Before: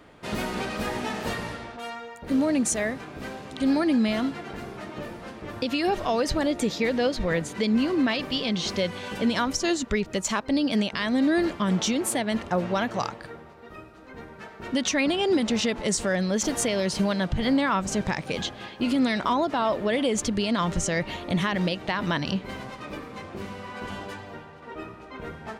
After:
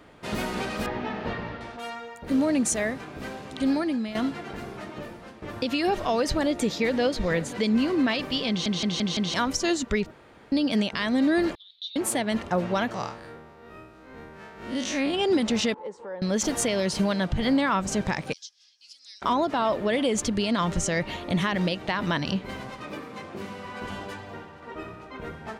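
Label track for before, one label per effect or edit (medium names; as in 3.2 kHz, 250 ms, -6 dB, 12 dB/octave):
0.860000	1.610000	distance through air 270 m
3.590000	4.150000	fade out, to -11.5 dB
4.780000	5.420000	fade out, to -7 dB
6.380000	7.040000	echo throw 530 ms, feedback 40%, level -17 dB
8.490000	8.490000	stutter in place 0.17 s, 5 plays
10.110000	10.520000	room tone
11.550000	11.960000	Butterworth band-pass 3.8 kHz, Q 6.7
12.940000	15.140000	spectral blur width 94 ms
15.740000	16.220000	two resonant band-passes 660 Hz, apart 0.8 oct
18.330000	19.220000	ladder band-pass 5.7 kHz, resonance 75%
22.880000	23.650000	high-pass 120 Hz
24.220000	25.070000	flutter echo walls apart 10.6 m, dies away in 0.43 s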